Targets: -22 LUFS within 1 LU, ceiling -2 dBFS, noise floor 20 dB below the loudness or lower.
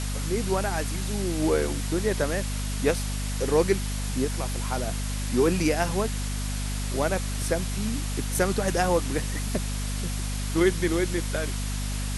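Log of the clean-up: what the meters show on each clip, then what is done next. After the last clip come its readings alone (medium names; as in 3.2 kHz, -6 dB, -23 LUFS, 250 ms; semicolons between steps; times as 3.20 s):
hum 50 Hz; highest harmonic 250 Hz; hum level -27 dBFS; noise floor -29 dBFS; noise floor target -47 dBFS; loudness -27.0 LUFS; peak level -9.5 dBFS; loudness target -22.0 LUFS
-> hum notches 50/100/150/200/250 Hz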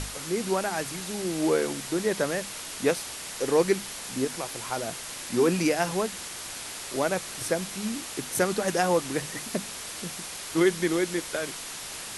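hum not found; noise floor -38 dBFS; noise floor target -49 dBFS
-> noise print and reduce 11 dB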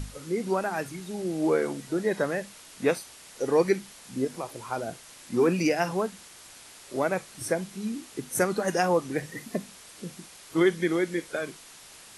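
noise floor -49 dBFS; loudness -28.5 LUFS; peak level -10.0 dBFS; loudness target -22.0 LUFS
-> trim +6.5 dB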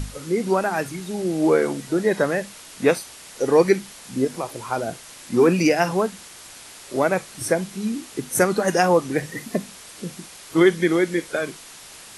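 loudness -22.0 LUFS; peak level -3.5 dBFS; noise floor -43 dBFS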